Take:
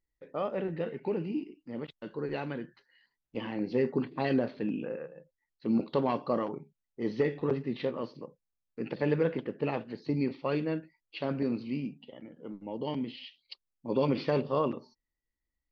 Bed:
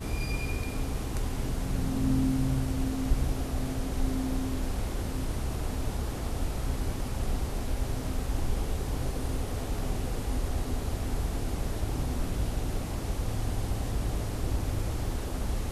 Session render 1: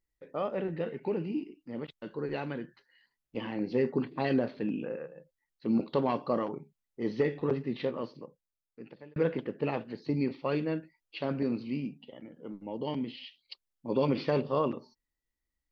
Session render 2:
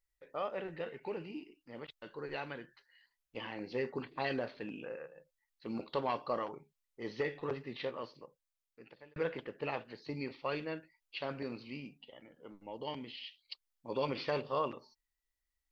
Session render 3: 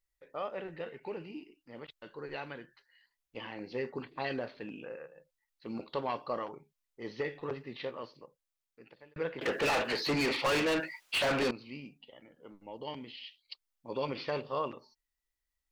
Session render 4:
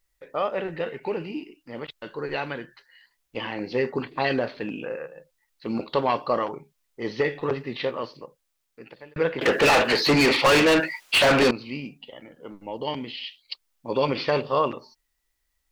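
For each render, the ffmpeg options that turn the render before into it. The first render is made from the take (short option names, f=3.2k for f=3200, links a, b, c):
-filter_complex "[0:a]asplit=2[a][b];[a]atrim=end=9.16,asetpts=PTS-STARTPTS,afade=t=out:st=7.98:d=1.18[c];[b]atrim=start=9.16,asetpts=PTS-STARTPTS,afade=t=in:d=0.004:c=hsin[d];[c][d]concat=n=2:v=0:a=1"
-af "equalizer=f=210:w=0.54:g=-13.5"
-filter_complex "[0:a]asettb=1/sr,asplit=3[a][b][c];[a]atrim=end=9.414[d];[b]atrim=start=9.41:end=11.51,asetpts=PTS-STARTPTS,afade=t=in:d=0.004:c=qsin,afade=t=out:st=2.096:d=0.004:c=qsin,asplit=2[e][f];[f]highpass=f=720:p=1,volume=34dB,asoftclip=type=tanh:threshold=-21.5dB[g];[e][g]amix=inputs=2:normalize=0,lowpass=f=4.6k:p=1,volume=-6dB[h];[c]atrim=start=11.506[i];[d][h]acrossfade=d=0.004:c1=hsin:c2=qsin[j];[j][i]acrossfade=d=0.004:c1=qsin:c2=hsin"
-af "volume=11.5dB"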